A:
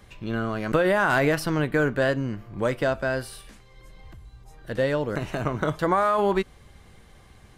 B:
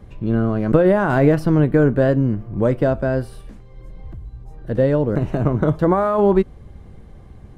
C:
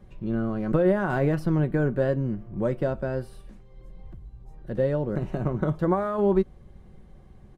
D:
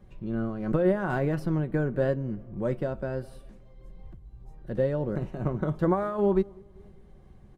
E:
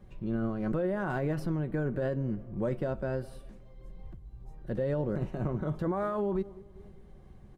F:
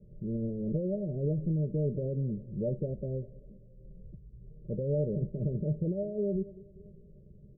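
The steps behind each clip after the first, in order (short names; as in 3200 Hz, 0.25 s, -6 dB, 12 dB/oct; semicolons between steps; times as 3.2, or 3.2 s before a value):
tilt shelf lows +10 dB; gain +1.5 dB
comb 5.4 ms, depth 36%; gain -8.5 dB
tape echo 0.195 s, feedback 53%, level -21 dB, low-pass 1100 Hz; noise-modulated level, depth 60%
limiter -22.5 dBFS, peak gain reduction 11 dB
rippled Chebyshev low-pass 620 Hz, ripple 9 dB; gain +3.5 dB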